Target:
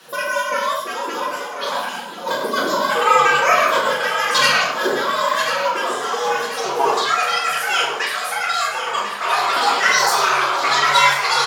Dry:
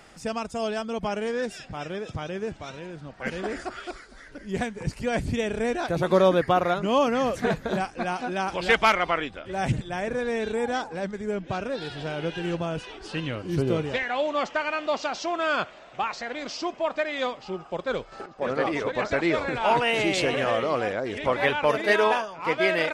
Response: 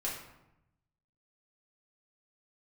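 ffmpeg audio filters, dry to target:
-filter_complex "[0:a]acontrast=55,asetrate=88200,aresample=44100,aecho=1:1:1039|2078|3117|4156|5195:0.316|0.139|0.0612|0.0269|0.0119[link_01];[1:a]atrim=start_sample=2205,afade=type=out:start_time=0.21:duration=0.01,atrim=end_sample=9702,asetrate=33957,aresample=44100[link_02];[link_01][link_02]afir=irnorm=-1:irlink=0,afreqshift=140,volume=-3dB"

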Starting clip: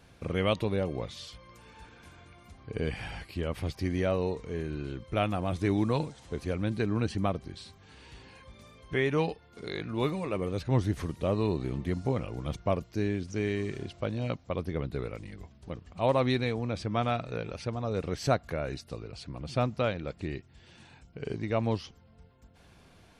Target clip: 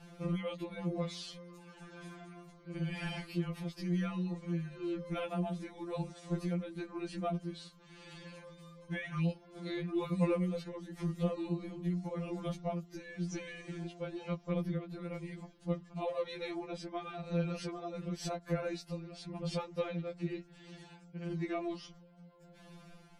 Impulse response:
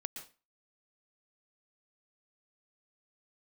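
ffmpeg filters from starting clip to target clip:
-af "lowshelf=frequency=300:gain=6.5,acompressor=threshold=-28dB:ratio=12,tremolo=f=0.97:d=0.43,afftfilt=real='re*2.83*eq(mod(b,8),0)':imag='im*2.83*eq(mod(b,8),0)':win_size=2048:overlap=0.75,volume=2.5dB"

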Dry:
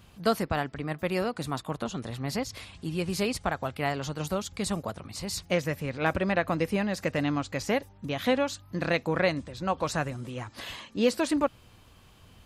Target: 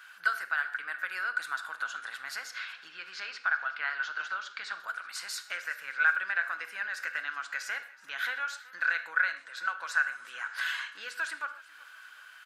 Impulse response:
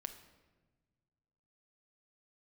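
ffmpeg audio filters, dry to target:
-filter_complex "[0:a]asettb=1/sr,asplit=3[link_01][link_02][link_03];[link_01]atrim=end=2.534[link_04];[link_02]atrim=start=2.53:end=4.8,asetpts=PTS-STARTPTS,afade=type=in:duration=0.004:curve=qsin,afade=type=out:start_time=2.266:duration=0.004:curve=qsin,lowpass=frequency=5200:width=0.5412,lowpass=frequency=5200:width=1.3066[link_05];[link_03]atrim=start=4.796[link_06];[link_04][link_05]acrossfade=duration=0.004:curve1=hsin:curve2=qsin[link_07];[link_07][link_06]acrossfade=duration=0.004:curve1=qsin:curve2=hsin,acompressor=threshold=-37dB:ratio=3,highpass=frequency=1500:width_type=q:width=15,aecho=1:1:375|750|1125:0.0841|0.037|0.0163[link_08];[1:a]atrim=start_sample=2205,atrim=end_sample=6615[link_09];[link_08][link_09]afir=irnorm=-1:irlink=0,volume=4.5dB"

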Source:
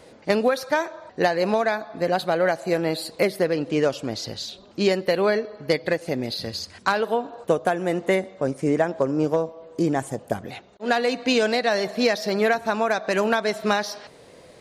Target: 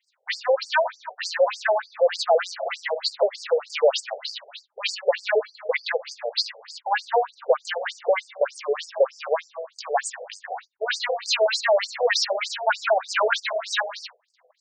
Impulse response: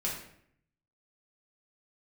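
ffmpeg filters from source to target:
-filter_complex "[0:a]agate=range=-30dB:threshold=-44dB:ratio=16:detection=peak,asplit=2[link_01][link_02];[link_02]highpass=frequency=720:poles=1,volume=21dB,asoftclip=type=tanh:threshold=-7dB[link_03];[link_01][link_03]amix=inputs=2:normalize=0,lowpass=frequency=7500:poles=1,volume=-6dB,afftfilt=real='re*between(b*sr/1024,550*pow(6500/550,0.5+0.5*sin(2*PI*3.3*pts/sr))/1.41,550*pow(6500/550,0.5+0.5*sin(2*PI*3.3*pts/sr))*1.41)':imag='im*between(b*sr/1024,550*pow(6500/550,0.5+0.5*sin(2*PI*3.3*pts/sr))/1.41,550*pow(6500/550,0.5+0.5*sin(2*PI*3.3*pts/sr))*1.41)':win_size=1024:overlap=0.75"

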